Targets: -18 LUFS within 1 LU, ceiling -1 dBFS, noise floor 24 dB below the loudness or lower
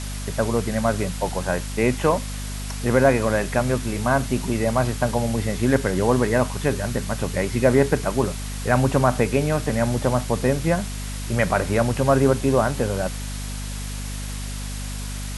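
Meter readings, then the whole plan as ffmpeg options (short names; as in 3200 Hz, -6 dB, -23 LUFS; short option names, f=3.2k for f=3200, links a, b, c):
hum 50 Hz; harmonics up to 250 Hz; hum level -28 dBFS; noise floor -30 dBFS; noise floor target -47 dBFS; loudness -22.5 LUFS; peak -3.0 dBFS; loudness target -18.0 LUFS
-> -af "bandreject=f=50:t=h:w=6,bandreject=f=100:t=h:w=6,bandreject=f=150:t=h:w=6,bandreject=f=200:t=h:w=6,bandreject=f=250:t=h:w=6"
-af "afftdn=nr=17:nf=-30"
-af "volume=4.5dB,alimiter=limit=-1dB:level=0:latency=1"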